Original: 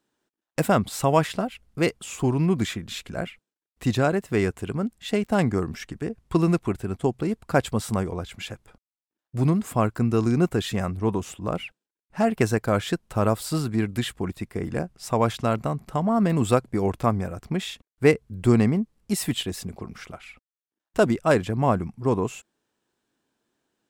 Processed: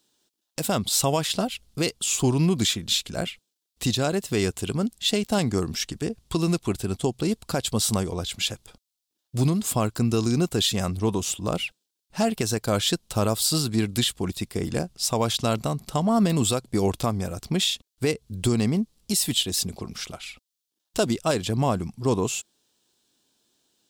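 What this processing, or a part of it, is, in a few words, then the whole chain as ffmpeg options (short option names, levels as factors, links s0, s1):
over-bright horn tweeter: -af "highshelf=f=2700:t=q:w=1.5:g=10.5,alimiter=limit=0.211:level=0:latency=1:release=233,volume=1.19"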